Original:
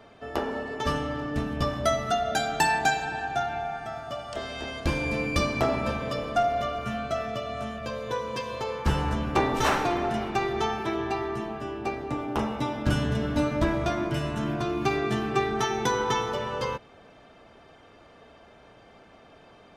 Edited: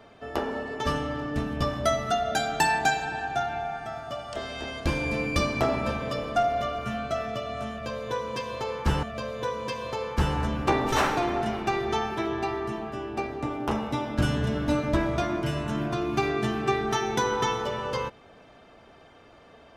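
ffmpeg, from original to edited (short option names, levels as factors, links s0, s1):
-filter_complex "[0:a]asplit=2[s0][s1];[s0]atrim=end=9.032[s2];[s1]atrim=start=7.708[s3];[s2][s3]acrossfade=d=0.004:c1=hsin:c2=hsin"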